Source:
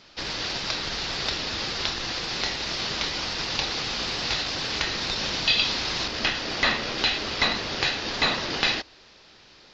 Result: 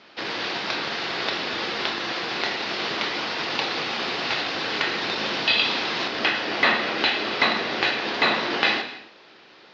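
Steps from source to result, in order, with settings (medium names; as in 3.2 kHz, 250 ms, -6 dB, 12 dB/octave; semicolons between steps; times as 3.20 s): band-pass 220–3000 Hz; gated-style reverb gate 330 ms falling, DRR 6.5 dB; trim +4.5 dB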